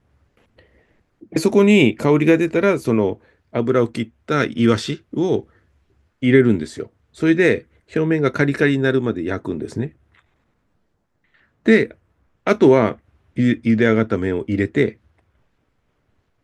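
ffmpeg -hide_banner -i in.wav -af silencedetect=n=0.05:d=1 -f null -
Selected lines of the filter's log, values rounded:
silence_start: 0.00
silence_end: 1.35 | silence_duration: 1.35
silence_start: 9.87
silence_end: 11.66 | silence_duration: 1.79
silence_start: 14.89
silence_end: 16.43 | silence_duration: 1.54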